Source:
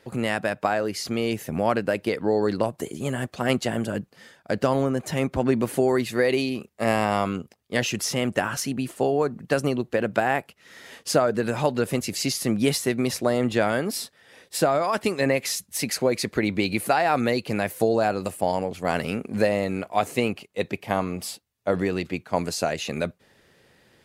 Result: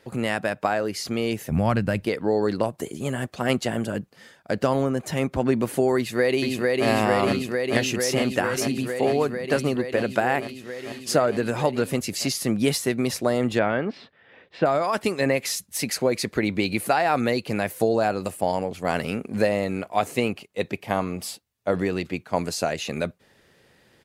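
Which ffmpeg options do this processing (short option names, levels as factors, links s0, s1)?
-filter_complex "[0:a]asplit=3[s0][s1][s2];[s0]afade=t=out:st=1.5:d=0.02[s3];[s1]asubboost=boost=11.5:cutoff=150,afade=t=in:st=1.5:d=0.02,afade=t=out:st=2.05:d=0.02[s4];[s2]afade=t=in:st=2.05:d=0.02[s5];[s3][s4][s5]amix=inputs=3:normalize=0,asplit=2[s6][s7];[s7]afade=t=in:st=5.97:d=0.01,afade=t=out:st=6.87:d=0.01,aecho=0:1:450|900|1350|1800|2250|2700|3150|3600|4050|4500|4950|5400:0.841395|0.715186|0.607908|0.516722|0.439214|0.373331|0.317332|0.269732|0.229272|0.194881|0.165649|0.140802[s8];[s6][s8]amix=inputs=2:normalize=0,asettb=1/sr,asplit=3[s9][s10][s11];[s9]atrim=end=13.594[s12];[s10]atrim=start=13.59:end=14.66,asetpts=PTS-STARTPTS,afade=t=in:d=0.004:c=qsin,afade=t=out:st=1.066:d=0.004:c=qsin,lowpass=f=3000:w=0.5412,lowpass=f=3000:w=1.3066[s13];[s11]atrim=start=14.656[s14];[s12][s13]acrossfade=d=0.004:c1=hsin:c2=qsin[s15];[s15][s14]acrossfade=d=0.004:c1=qsin:c2=hsin"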